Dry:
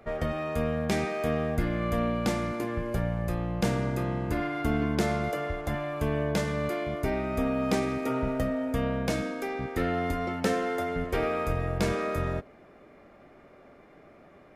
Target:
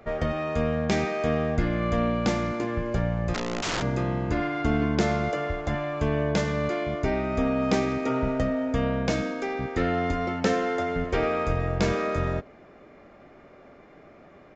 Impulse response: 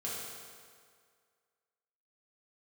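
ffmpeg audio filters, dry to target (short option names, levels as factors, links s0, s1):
-filter_complex "[0:a]asplit=3[s0][s1][s2];[s0]afade=t=out:st=3.33:d=0.02[s3];[s1]aeval=exprs='(mod(18.8*val(0)+1,2)-1)/18.8':c=same,afade=t=in:st=3.33:d=0.02,afade=t=out:st=3.81:d=0.02[s4];[s2]afade=t=in:st=3.81:d=0.02[s5];[s3][s4][s5]amix=inputs=3:normalize=0,aresample=16000,aresample=44100,volume=1.41"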